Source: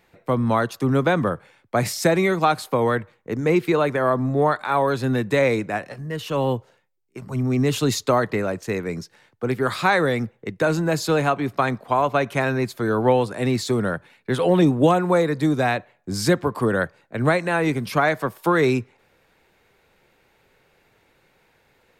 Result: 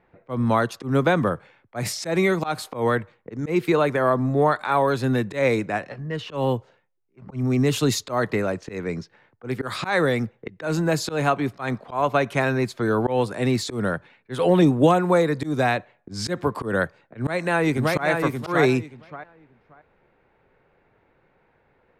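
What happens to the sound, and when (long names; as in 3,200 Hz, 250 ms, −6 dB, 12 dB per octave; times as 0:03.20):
0:17.18–0:18.07: delay throw 580 ms, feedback 20%, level −4.5 dB
whole clip: low-pass that shuts in the quiet parts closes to 1,600 Hz, open at −18.5 dBFS; volume swells 134 ms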